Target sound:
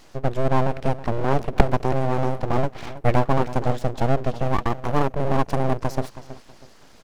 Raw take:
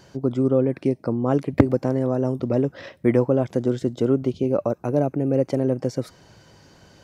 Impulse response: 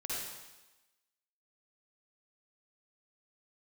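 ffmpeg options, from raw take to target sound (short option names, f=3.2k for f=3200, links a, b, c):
-filter_complex "[0:a]asplit=2[a][b];[b]adelay=322,lowpass=f=4.9k:p=1,volume=-14.5dB,asplit=2[c][d];[d]adelay=322,lowpass=f=4.9k:p=1,volume=0.3,asplit=2[e][f];[f]adelay=322,lowpass=f=4.9k:p=1,volume=0.3[g];[a][c][e][g]amix=inputs=4:normalize=0,aeval=exprs='abs(val(0))':c=same,volume=2dB"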